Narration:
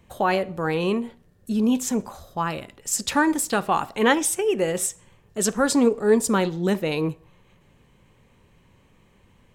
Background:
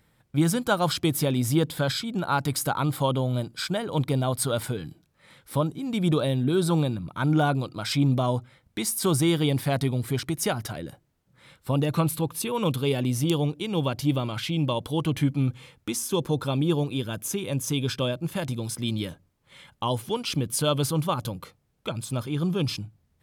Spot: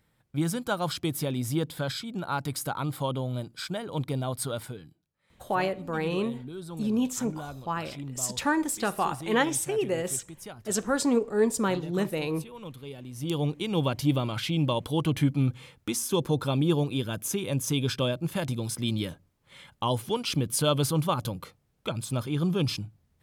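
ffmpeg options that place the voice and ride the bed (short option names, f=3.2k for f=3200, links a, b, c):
-filter_complex "[0:a]adelay=5300,volume=-5.5dB[a];[1:a]volume=10.5dB,afade=t=out:st=4.46:d=0.51:silence=0.281838,afade=t=in:st=13.12:d=0.41:silence=0.158489[b];[a][b]amix=inputs=2:normalize=0"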